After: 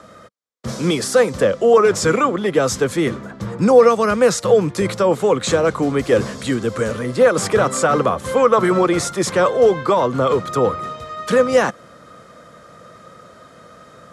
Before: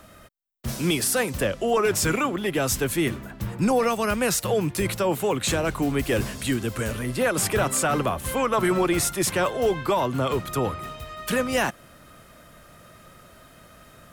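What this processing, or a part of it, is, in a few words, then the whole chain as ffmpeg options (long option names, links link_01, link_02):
car door speaker: -af "highpass=100,equalizer=frequency=200:width_type=q:width=4:gain=3,equalizer=frequency=490:width_type=q:width=4:gain=10,equalizer=frequency=1200:width_type=q:width=4:gain=6,equalizer=frequency=2700:width_type=q:width=4:gain=-7,equalizer=frequency=8900:width_type=q:width=4:gain=-6,lowpass=frequency=9100:width=0.5412,lowpass=frequency=9100:width=1.3066,volume=4dB"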